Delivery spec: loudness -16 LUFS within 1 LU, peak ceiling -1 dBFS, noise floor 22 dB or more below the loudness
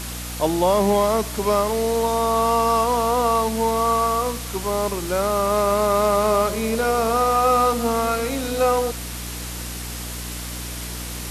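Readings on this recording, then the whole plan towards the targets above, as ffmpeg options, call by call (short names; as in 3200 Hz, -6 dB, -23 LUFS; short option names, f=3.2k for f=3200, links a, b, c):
hum 60 Hz; harmonics up to 300 Hz; hum level -31 dBFS; noise floor -31 dBFS; noise floor target -43 dBFS; loudness -21.0 LUFS; peak -7.5 dBFS; loudness target -16.0 LUFS
-> -af "bandreject=f=60:t=h:w=4,bandreject=f=120:t=h:w=4,bandreject=f=180:t=h:w=4,bandreject=f=240:t=h:w=4,bandreject=f=300:t=h:w=4"
-af "afftdn=nr=12:nf=-31"
-af "volume=5dB"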